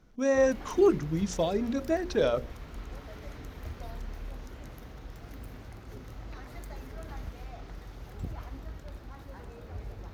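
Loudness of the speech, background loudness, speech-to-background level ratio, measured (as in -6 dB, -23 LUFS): -27.5 LUFS, -44.5 LUFS, 17.0 dB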